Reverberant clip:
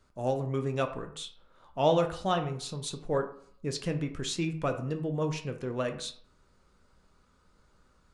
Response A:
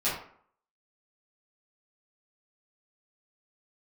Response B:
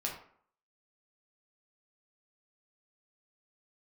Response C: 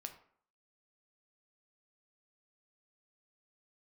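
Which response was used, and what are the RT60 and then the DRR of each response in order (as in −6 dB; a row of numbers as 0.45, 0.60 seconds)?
C; 0.60, 0.60, 0.60 seconds; −11.5, −2.0, 5.5 decibels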